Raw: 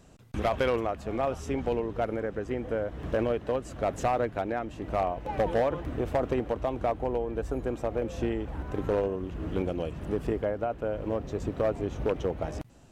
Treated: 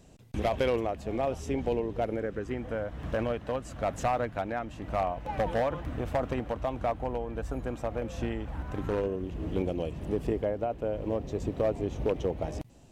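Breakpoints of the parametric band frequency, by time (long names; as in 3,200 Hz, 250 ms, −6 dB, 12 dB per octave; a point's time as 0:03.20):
parametric band −7.5 dB 0.72 octaves
0:02.11 1,300 Hz
0:02.66 390 Hz
0:08.74 390 Hz
0:09.33 1,400 Hz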